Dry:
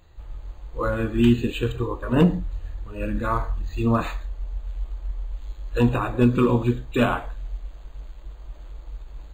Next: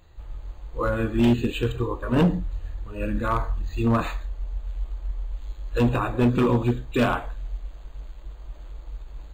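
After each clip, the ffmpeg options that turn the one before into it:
-af "volume=14.5dB,asoftclip=hard,volume=-14.5dB"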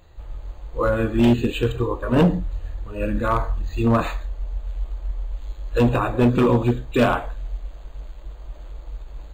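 -af "equalizer=f=580:t=o:w=0.86:g=3.5,volume=2.5dB"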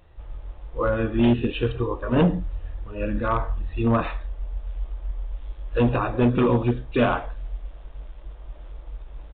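-af "aresample=8000,aresample=44100,volume=-2.5dB"

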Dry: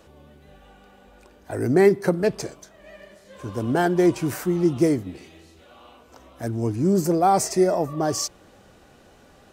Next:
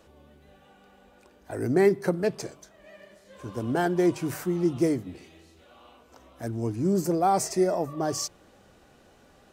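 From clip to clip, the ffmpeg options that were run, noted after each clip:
-af "bandreject=f=50:t=h:w=6,bandreject=f=100:t=h:w=6,bandreject=f=150:t=h:w=6,volume=-4.5dB"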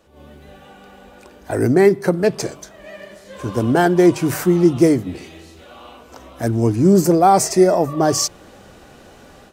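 -af "dynaudnorm=f=110:g=3:m=13dB"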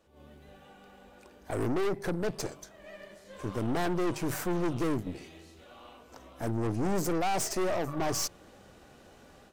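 -af "aeval=exprs='(tanh(11.2*val(0)+0.75)-tanh(0.75))/11.2':c=same,volume=-6.5dB"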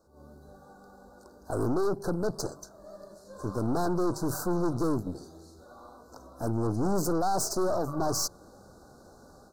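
-af "asuperstop=centerf=2500:order=12:qfactor=0.96,volume=2dB"

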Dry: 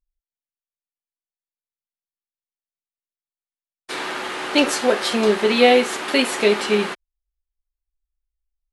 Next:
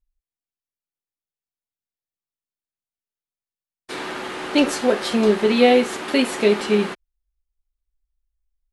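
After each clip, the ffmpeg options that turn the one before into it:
-af "lowshelf=f=370:g=9.5,volume=-4dB"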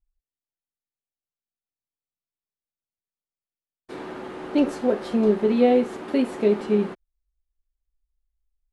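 -af "tiltshelf=f=1.2k:g=8,volume=-9dB"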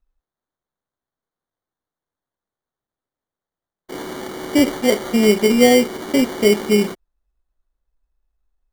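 -af "acrusher=samples=17:mix=1:aa=0.000001,volume=5.5dB"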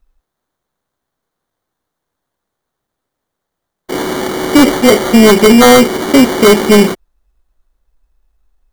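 -af "aeval=exprs='0.794*sin(PI/2*2.51*val(0)/0.794)':c=same,volume=1dB"

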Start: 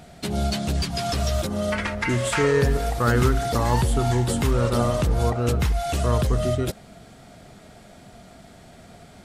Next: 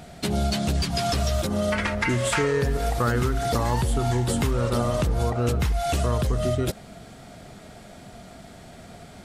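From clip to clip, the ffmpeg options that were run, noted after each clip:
-af "acompressor=threshold=-22dB:ratio=6,volume=2.5dB"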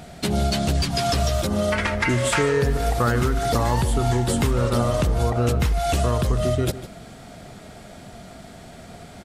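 -filter_complex "[0:a]asplit=2[a][b];[b]adelay=151.6,volume=-14dB,highshelf=f=4k:g=-3.41[c];[a][c]amix=inputs=2:normalize=0,volume=2.5dB"

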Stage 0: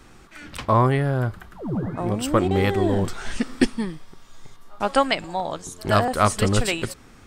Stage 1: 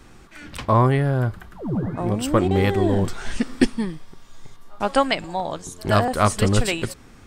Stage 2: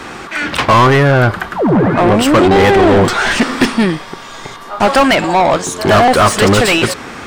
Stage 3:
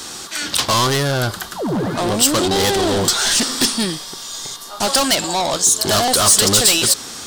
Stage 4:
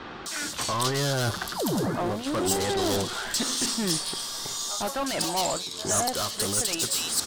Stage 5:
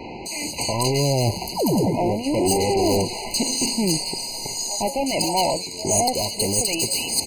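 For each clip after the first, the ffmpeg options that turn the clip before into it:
-af "lowshelf=f=330:g=2.5,bandreject=f=1.3k:w=27"
-filter_complex "[0:a]asplit=2[a][b];[b]highpass=f=720:p=1,volume=33dB,asoftclip=type=tanh:threshold=-1.5dB[c];[a][c]amix=inputs=2:normalize=0,lowpass=f=2.3k:p=1,volume=-6dB,volume=1dB"
-af "aexciter=amount=6.1:drive=7.8:freq=3.4k,volume=-9.5dB"
-filter_complex "[0:a]areverse,acompressor=threshold=-23dB:ratio=6,areverse,acrossover=split=2700[a][b];[b]adelay=260[c];[a][c]amix=inputs=2:normalize=0,volume=-1.5dB"
-af "afftfilt=real='re*eq(mod(floor(b*sr/1024/1000),2),0)':imag='im*eq(mod(floor(b*sr/1024/1000),2),0)':win_size=1024:overlap=0.75,volume=7dB"

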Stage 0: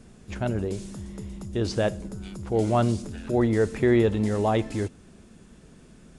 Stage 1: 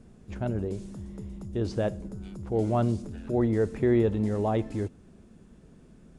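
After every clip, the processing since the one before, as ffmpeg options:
-af "tiltshelf=f=1.2k:g=4.5,volume=-6.5dB"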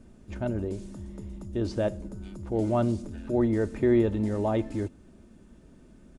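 -af "aecho=1:1:3.3:0.35"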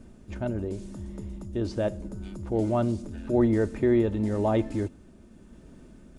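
-af "areverse,acompressor=mode=upward:threshold=-46dB:ratio=2.5,areverse,tremolo=f=0.87:d=0.29,volume=2.5dB"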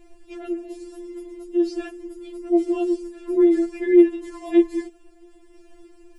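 -af "afftfilt=real='re*4*eq(mod(b,16),0)':imag='im*4*eq(mod(b,16),0)':win_size=2048:overlap=0.75,volume=5dB"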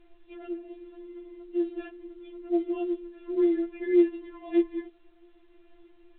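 -af "volume=-7.5dB" -ar 8000 -c:a pcm_alaw

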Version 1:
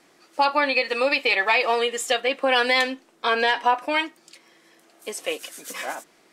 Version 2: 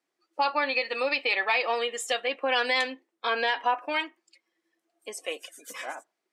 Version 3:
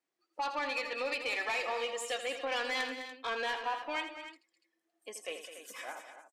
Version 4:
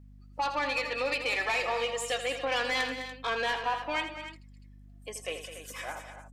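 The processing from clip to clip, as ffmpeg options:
-af "highpass=f=290:p=1,afftdn=nr=20:nf=-44,volume=-5dB"
-af "asoftclip=type=tanh:threshold=-21.5dB,aecho=1:1:81.63|207|288.6:0.316|0.251|0.251,volume=-6.5dB"
-af "aeval=exprs='val(0)+0.00178*(sin(2*PI*50*n/s)+sin(2*PI*2*50*n/s)/2+sin(2*PI*3*50*n/s)/3+sin(2*PI*4*50*n/s)/4+sin(2*PI*5*50*n/s)/5)':c=same,volume=4.5dB"

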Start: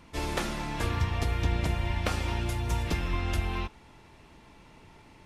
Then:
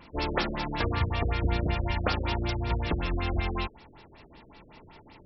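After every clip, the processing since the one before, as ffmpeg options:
-af "bass=f=250:g=-4,treble=f=4k:g=10,afftfilt=real='re*lt(b*sr/1024,570*pow(5800/570,0.5+0.5*sin(2*PI*5.3*pts/sr)))':imag='im*lt(b*sr/1024,570*pow(5800/570,0.5+0.5*sin(2*PI*5.3*pts/sr)))':win_size=1024:overlap=0.75,volume=4dB"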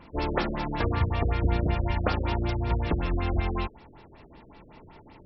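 -af "highshelf=f=2.3k:g=-9.5,volume=2.5dB"

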